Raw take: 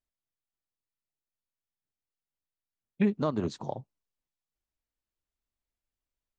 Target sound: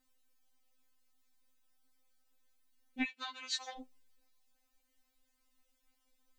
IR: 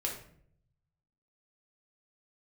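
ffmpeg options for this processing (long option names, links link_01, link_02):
-filter_complex "[0:a]acompressor=threshold=-36dB:ratio=6,asettb=1/sr,asplit=3[link_01][link_02][link_03];[link_01]atrim=end=3.024[link_04];[link_02]atrim=start=3.02:end=3.79,asetpts=PTS-STARTPTS,afade=type=in:duration=0.004:curve=qsin,afade=type=out:start_time=0.766:duration=0.004:curve=qsin,highpass=frequency=2200:width_type=q:width=2.2[link_05];[link_03]atrim=start=3.786[link_06];[link_04][link_05]acrossfade=duration=0.004:curve1=hsin:curve2=qsin[link_07];[link_07][link_06]acrossfade=duration=0.004:curve1=qsin:curve2=hsin,afftfilt=real='re*3.46*eq(mod(b,12),0)':imag='im*3.46*eq(mod(b,12),0)':win_size=2048:overlap=0.75,volume=16dB"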